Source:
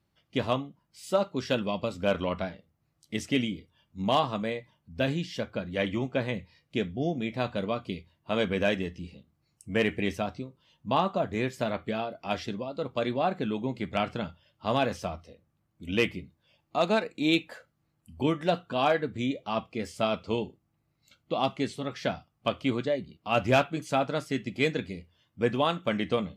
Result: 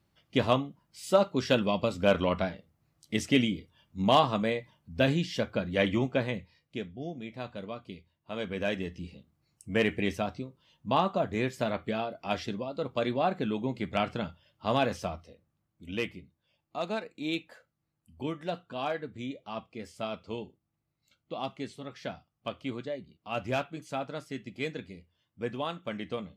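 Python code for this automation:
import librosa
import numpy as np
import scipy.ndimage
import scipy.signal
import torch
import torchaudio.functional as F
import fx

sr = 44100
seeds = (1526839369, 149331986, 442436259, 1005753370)

y = fx.gain(x, sr, db=fx.line((6.01, 2.5), (6.93, -9.0), (8.33, -9.0), (9.01, -0.5), (15.05, -0.5), (16.16, -8.0)))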